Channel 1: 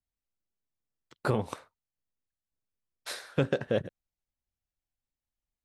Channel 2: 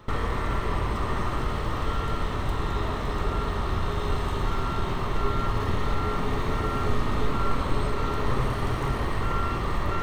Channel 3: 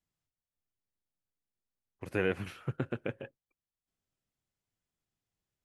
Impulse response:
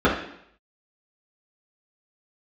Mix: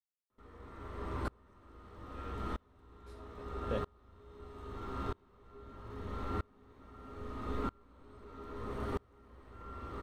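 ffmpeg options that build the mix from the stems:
-filter_complex "[0:a]alimiter=limit=-19.5dB:level=0:latency=1,aeval=exprs='val(0)*pow(10,-26*if(lt(mod(1.1*n/s,1),2*abs(1.1)/1000),1-mod(1.1*n/s,1)/(2*abs(1.1)/1000),(mod(1.1*n/s,1)-2*abs(1.1)/1000)/(1-2*abs(1.1)/1000))/20)':c=same,volume=0dB[a];[1:a]equalizer=f=110:t=o:w=0.31:g=6,adelay=300,volume=-13dB,asplit=2[b][c];[c]volume=-20dB[d];[2:a]volume=-16.5dB[e];[3:a]atrim=start_sample=2205[f];[d][f]afir=irnorm=-1:irlink=0[g];[a][b][e][g]amix=inputs=4:normalize=0,aeval=exprs='val(0)*pow(10,-32*if(lt(mod(-0.78*n/s,1),2*abs(-0.78)/1000),1-mod(-0.78*n/s,1)/(2*abs(-0.78)/1000),(mod(-0.78*n/s,1)-2*abs(-0.78)/1000)/(1-2*abs(-0.78)/1000))/20)':c=same"

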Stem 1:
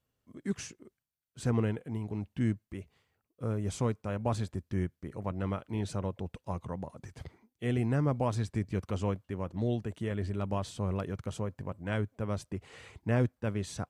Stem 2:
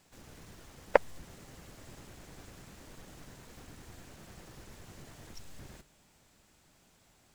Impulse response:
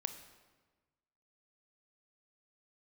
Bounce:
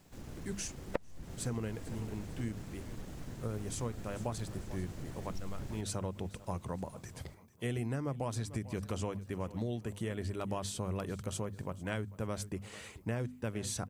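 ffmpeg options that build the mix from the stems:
-filter_complex "[0:a]aemphasis=mode=production:type=50kf,bandreject=f=50:t=h:w=6,bandreject=f=100:t=h:w=6,bandreject=f=150:t=h:w=6,bandreject=f=200:t=h:w=6,bandreject=f=250:t=h:w=6,volume=0dB,asplit=2[a][b];[b]volume=-20.5dB[c];[1:a]lowshelf=f=470:g=10,volume=-1dB,asplit=2[d][e];[e]apad=whole_len=612768[f];[a][f]sidechaincompress=threshold=-47dB:ratio=8:attack=29:release=126[g];[c]aecho=0:1:444|888|1332|1776|2220|2664:1|0.4|0.16|0.064|0.0256|0.0102[h];[g][d][h]amix=inputs=3:normalize=0,acompressor=threshold=-32dB:ratio=12"

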